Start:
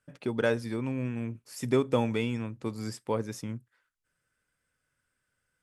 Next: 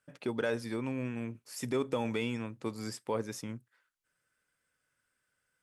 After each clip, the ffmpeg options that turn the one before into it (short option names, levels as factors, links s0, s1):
-af "lowshelf=f=82:g=-5.5,alimiter=limit=0.0944:level=0:latency=1:release=15,lowshelf=f=240:g=-5.5"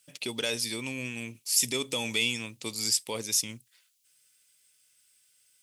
-af "aexciter=amount=8.9:drive=5.3:freq=2300,volume=0.75"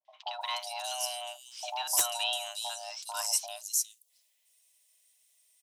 -filter_complex "[0:a]acrossover=split=510|3700[s0][s1][s2];[s1]adelay=50[s3];[s2]adelay=410[s4];[s0][s3][s4]amix=inputs=3:normalize=0,afreqshift=490,aeval=exprs='(mod(4.47*val(0)+1,2)-1)/4.47':c=same,volume=0.841"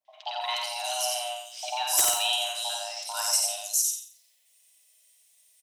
-filter_complex "[0:a]asplit=2[s0][s1];[s1]adelay=50,volume=0.501[s2];[s0][s2]amix=inputs=2:normalize=0,asplit=2[s3][s4];[s4]aecho=0:1:89|178|267|356:0.668|0.18|0.0487|0.0132[s5];[s3][s5]amix=inputs=2:normalize=0,volume=1.41"